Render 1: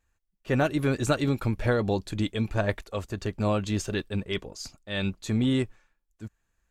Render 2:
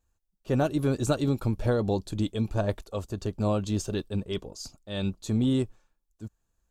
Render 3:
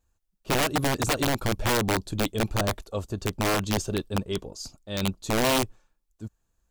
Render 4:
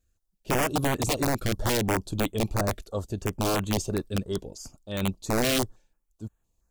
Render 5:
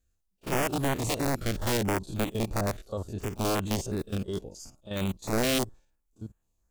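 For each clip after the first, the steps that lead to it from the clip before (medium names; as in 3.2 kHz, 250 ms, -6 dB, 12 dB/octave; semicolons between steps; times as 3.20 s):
peaking EQ 2 kHz -12.5 dB 1 oct
integer overflow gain 19.5 dB; trim +2 dB
step-sequenced notch 5.9 Hz 930–5100 Hz
spectrogram pixelated in time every 50 ms; pre-echo 34 ms -19 dB; trim -1 dB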